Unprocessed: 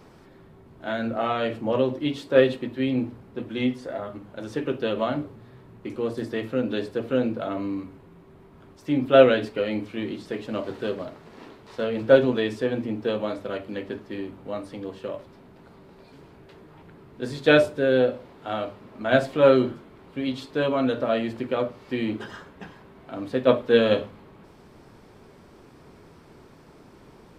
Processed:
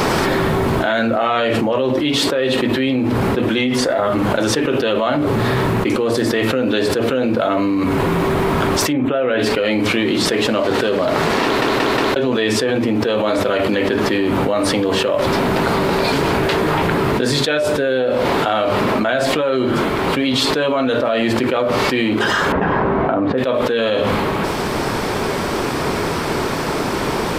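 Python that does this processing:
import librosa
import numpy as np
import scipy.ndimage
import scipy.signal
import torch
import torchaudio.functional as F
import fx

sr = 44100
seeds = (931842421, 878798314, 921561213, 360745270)

y = fx.moving_average(x, sr, points=9, at=(8.92, 9.38), fade=0.02)
y = fx.lowpass(y, sr, hz=1300.0, slope=12, at=(22.52, 23.38))
y = fx.edit(y, sr, fx.stutter_over(start_s=11.44, slice_s=0.18, count=4), tone=tone)
y = fx.rider(y, sr, range_db=3, speed_s=0.5)
y = fx.low_shelf(y, sr, hz=370.0, db=-9.0)
y = fx.env_flatten(y, sr, amount_pct=100)
y = y * librosa.db_to_amplitude(-2.5)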